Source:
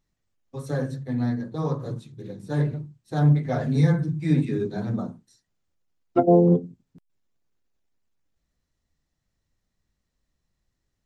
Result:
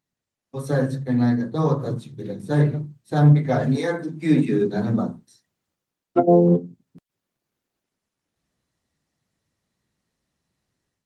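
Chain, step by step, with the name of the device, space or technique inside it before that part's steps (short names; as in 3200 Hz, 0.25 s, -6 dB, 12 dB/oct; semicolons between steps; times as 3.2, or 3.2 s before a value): 3.75–4.71 HPF 350 Hz -> 120 Hz 24 dB/oct; video call (HPF 120 Hz 12 dB/oct; AGC gain up to 9 dB; gain -2 dB; Opus 32 kbps 48000 Hz)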